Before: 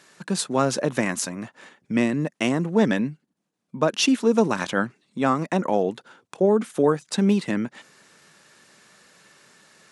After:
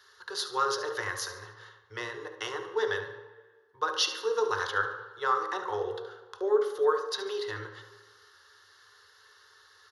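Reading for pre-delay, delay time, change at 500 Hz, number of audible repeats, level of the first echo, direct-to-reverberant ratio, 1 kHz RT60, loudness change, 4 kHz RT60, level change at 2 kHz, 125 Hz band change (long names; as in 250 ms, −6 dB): 3 ms, 72 ms, −6.5 dB, 1, −11.0 dB, 3.5 dB, 1.4 s, −7.5 dB, 1.0 s, −3.5 dB, −20.0 dB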